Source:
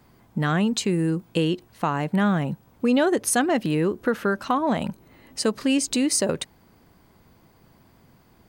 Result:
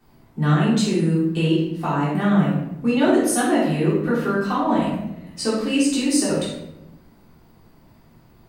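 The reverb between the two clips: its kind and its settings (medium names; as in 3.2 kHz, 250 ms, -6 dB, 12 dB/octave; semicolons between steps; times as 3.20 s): simulated room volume 260 m³, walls mixed, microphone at 3.5 m; trim -8.5 dB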